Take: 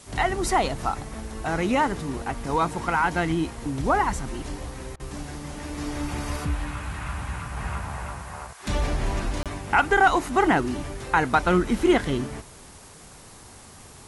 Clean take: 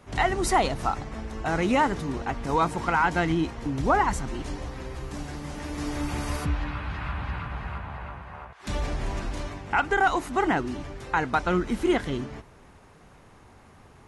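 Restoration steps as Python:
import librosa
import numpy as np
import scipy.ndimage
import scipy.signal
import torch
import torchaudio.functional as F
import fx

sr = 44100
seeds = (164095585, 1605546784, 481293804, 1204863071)

y = fx.fix_interpolate(x, sr, at_s=(9.43,), length_ms=27.0)
y = fx.fix_interpolate(y, sr, at_s=(4.96,), length_ms=36.0)
y = fx.noise_reduce(y, sr, print_start_s=12.78, print_end_s=13.28, reduce_db=6.0)
y = fx.fix_level(y, sr, at_s=7.57, step_db=-4.0)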